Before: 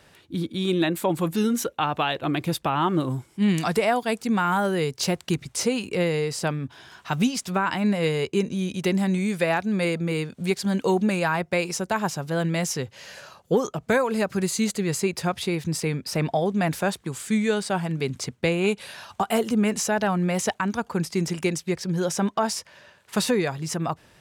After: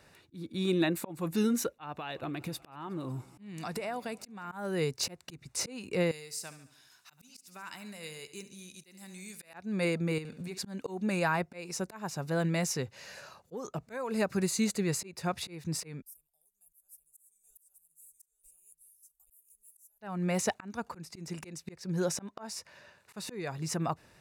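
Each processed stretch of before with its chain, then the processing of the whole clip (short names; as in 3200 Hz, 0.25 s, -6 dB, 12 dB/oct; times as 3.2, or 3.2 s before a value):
1.92–4.52 compressor, threshold -28 dBFS + warbling echo 0.183 s, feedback 74%, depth 98 cents, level -23.5 dB
6.11–9.54 pre-emphasis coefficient 0.9 + feedback echo 71 ms, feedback 52%, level -14 dB
10.18–10.58 compressor, threshold -32 dBFS + flutter echo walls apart 11.9 m, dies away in 0.43 s
16.02–20.01 inverse Chebyshev band-stop 100–4500 Hz, stop band 60 dB + bell 3500 Hz +14.5 dB 2.5 oct + echo 0.827 s -5 dB
whole clip: notch 3200 Hz, Q 6.3; auto swell 0.316 s; gain -5 dB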